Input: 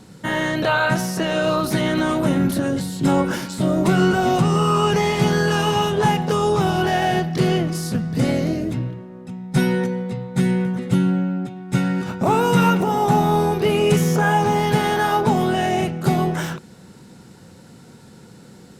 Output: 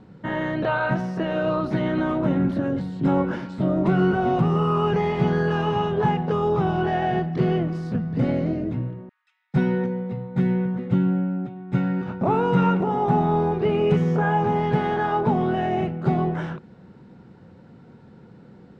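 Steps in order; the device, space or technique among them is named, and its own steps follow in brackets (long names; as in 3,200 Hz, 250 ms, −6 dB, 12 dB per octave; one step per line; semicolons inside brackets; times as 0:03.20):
phone in a pocket (low-pass filter 3,300 Hz 12 dB per octave; high-shelf EQ 2,200 Hz −11 dB)
0:09.09–0:09.54: Bessel high-pass filter 2,400 Hz, order 8
level −2.5 dB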